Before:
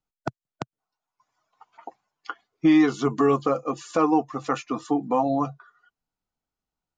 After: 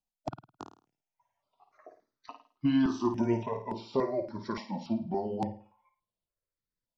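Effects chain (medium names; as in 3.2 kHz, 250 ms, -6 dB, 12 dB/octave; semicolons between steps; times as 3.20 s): pitch bend over the whole clip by -6.5 st starting unshifted; flutter echo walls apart 9.1 m, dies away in 0.4 s; stepped phaser 3.5 Hz 380–6200 Hz; trim -4 dB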